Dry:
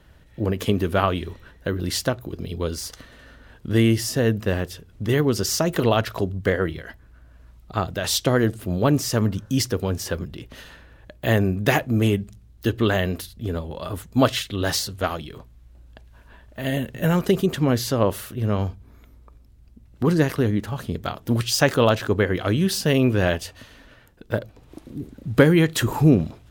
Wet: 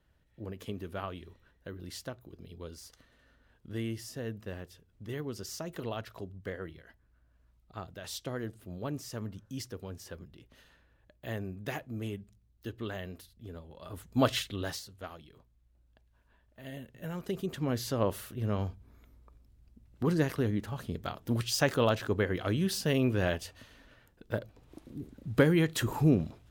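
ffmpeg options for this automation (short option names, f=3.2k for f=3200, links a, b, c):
-af "volume=3.5dB,afade=t=in:st=13.77:d=0.6:silence=0.266073,afade=t=out:st=14.37:d=0.44:silence=0.237137,afade=t=in:st=17.13:d=0.91:silence=0.316228"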